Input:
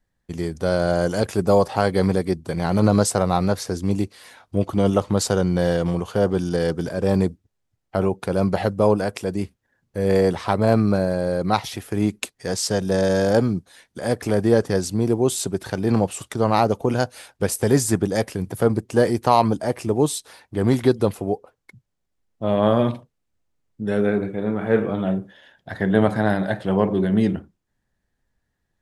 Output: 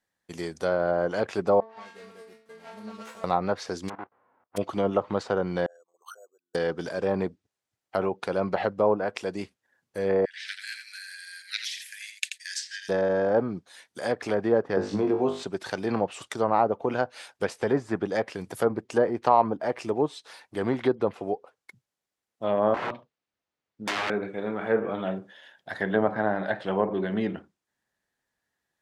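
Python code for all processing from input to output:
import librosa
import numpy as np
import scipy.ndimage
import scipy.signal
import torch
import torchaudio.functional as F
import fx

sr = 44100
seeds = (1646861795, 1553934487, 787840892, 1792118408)

y = fx.chain(x, sr, fx.stiff_resonator(f0_hz=220.0, decay_s=0.57, stiffness=0.002),
    fx.running_max(window=9), at=(1.6, 3.24))
y = fx.envelope_flatten(y, sr, power=0.1, at=(3.88, 4.56), fade=0.02)
y = fx.lowpass(y, sr, hz=1200.0, slope=24, at=(3.88, 4.56), fade=0.02)
y = fx.level_steps(y, sr, step_db=16, at=(3.88, 4.56), fade=0.02)
y = fx.chain(y, sr, fx.envelope_sharpen(power=3.0),
    fx.highpass(hz=1200.0, slope=24),
    fx.resample_bad(factor=6, down='filtered', up='hold'), at=(5.66, 6.55))
y = fx.chain(y, sr, fx.steep_highpass(hz=1600.0, slope=96),
    fx.echo_single(ms=84, db=-8.0), at=(10.25, 12.89))
y = fx.chain(y, sr, fx.high_shelf(hz=7400.0, db=-7.5),
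    fx.room_flutter(wall_m=3.4, rt60_s=0.32),
    fx.band_squash(depth_pct=100), at=(14.77, 15.43))
y = fx.chain(y, sr, fx.lowpass(hz=4900.0, slope=12),
    fx.overflow_wrap(gain_db=19.5), at=(22.74, 24.1))
y = fx.highpass(y, sr, hz=640.0, slope=6)
y = fx.env_lowpass_down(y, sr, base_hz=1200.0, full_db=-19.5)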